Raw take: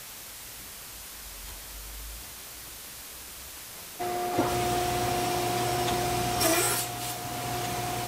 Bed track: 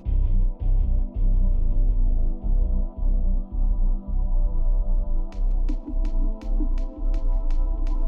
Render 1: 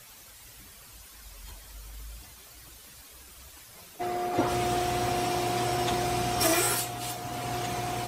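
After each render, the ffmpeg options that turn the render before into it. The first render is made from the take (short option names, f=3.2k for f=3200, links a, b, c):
-af "afftdn=nr=10:nf=-43"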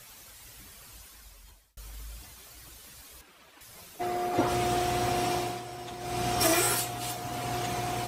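-filter_complex "[0:a]asettb=1/sr,asplit=3[a][b][c];[a]atrim=end=3.214[d];[b]atrim=start=3.21:end=3.61,asetpts=PTS-STARTPTS,afade=t=in:d=0.004:c=qsin,afade=t=out:st=0.396:d=0.004:c=qsin,acrossover=split=160 3600:gain=0.0794 1 0.2[e][f][g];[e][f][g]amix=inputs=3:normalize=0[h];[c]atrim=start=3.606[i];[d][h]acrossfade=d=0.004:c1=hsin:c2=qsin[j];[j][i]acrossfade=d=0.004:c1=qsin:c2=hsin,asplit=4[k][l][m][n];[k]atrim=end=1.77,asetpts=PTS-STARTPTS,afade=t=out:st=0.98:d=0.79[o];[l]atrim=start=1.77:end=5.62,asetpts=PTS-STARTPTS,afade=t=in:d=0.004:c=hsin,afade=t=out:st=3.56:d=0.29:silence=0.237137[p];[m]atrim=start=5.62:end=5.99,asetpts=PTS-STARTPTS,volume=-12.5dB[q];[n]atrim=start=5.99,asetpts=PTS-STARTPTS,afade=t=in:d=0.29:silence=0.237137[r];[o][p][q][r]concat=n=4:v=0:a=1"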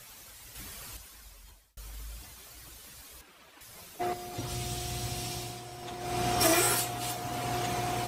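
-filter_complex "[0:a]asettb=1/sr,asplit=3[a][b][c];[a]atrim=end=0.554[d];[b]atrim=start=0.55:end=0.97,asetpts=PTS-STARTPTS,afade=t=in:d=0.004:c=qsin,afade=t=out:st=0.416:d=0.004:c=qsin,acontrast=39[e];[c]atrim=start=0.966[f];[d][e]acrossfade=d=0.004:c1=hsin:c2=qsin[g];[g][f]acrossfade=d=0.004:c1=qsin:c2=hsin,asettb=1/sr,asplit=3[h][i][j];[h]atrim=end=4.134[k];[i]atrim=start=4.13:end=5.83,asetpts=PTS-STARTPTS,afade=t=in:d=0.004:c=qsin,afade=t=out:st=1.696:d=0.004:c=qsin,acrossover=split=170|3000[l][m][n];[m]acompressor=threshold=-43dB:ratio=4:attack=3.2:release=140:knee=2.83:detection=peak[o];[l][o][n]amix=inputs=3:normalize=0[p];[j]atrim=start=5.826[q];[k][p]acrossfade=d=0.004:c1=hsin:c2=qsin[r];[r][q]acrossfade=d=0.004:c1=qsin:c2=hsin"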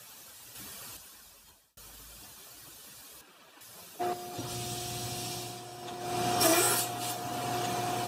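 -af "highpass=130,bandreject=f=2.1k:w=5.8"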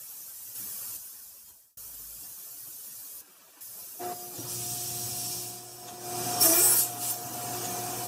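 -af "flanger=delay=6.2:depth=4.6:regen=-52:speed=0.45:shape=sinusoidal,aexciter=amount=3.7:drive=5.2:freq=5.2k"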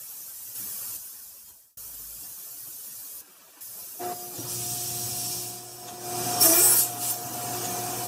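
-af "volume=3dB"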